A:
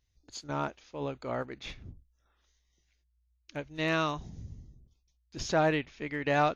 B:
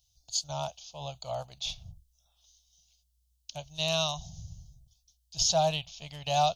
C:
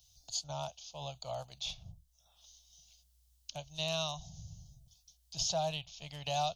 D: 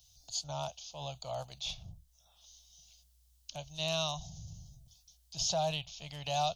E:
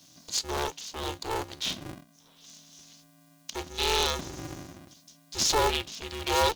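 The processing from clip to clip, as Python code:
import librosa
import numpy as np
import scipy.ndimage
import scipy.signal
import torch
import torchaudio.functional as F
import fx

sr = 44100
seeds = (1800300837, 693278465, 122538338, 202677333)

y1 = fx.curve_eq(x, sr, hz=(170.0, 240.0, 390.0, 690.0, 1900.0, 3000.0, 6000.0), db=(0, -22, -24, 6, -22, 9, 14))
y2 = fx.band_squash(y1, sr, depth_pct=40)
y2 = y2 * librosa.db_to_amplitude(-5.5)
y3 = fx.transient(y2, sr, attack_db=-3, sustain_db=2)
y3 = y3 * librosa.db_to_amplitude(2.0)
y4 = y3 * np.sign(np.sin(2.0 * np.pi * 220.0 * np.arange(len(y3)) / sr))
y4 = y4 * librosa.db_to_amplitude(7.5)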